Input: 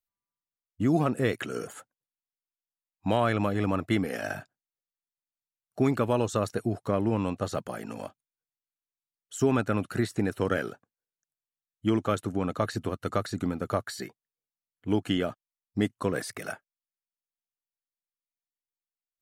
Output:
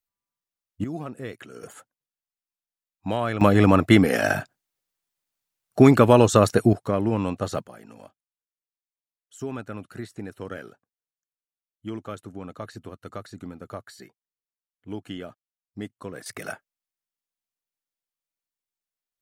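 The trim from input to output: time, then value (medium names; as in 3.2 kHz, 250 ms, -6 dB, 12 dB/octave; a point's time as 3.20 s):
+2 dB
from 0.84 s -9 dB
from 1.63 s -1 dB
from 3.41 s +11 dB
from 6.73 s +3 dB
from 7.66 s -8.5 dB
from 16.26 s +2 dB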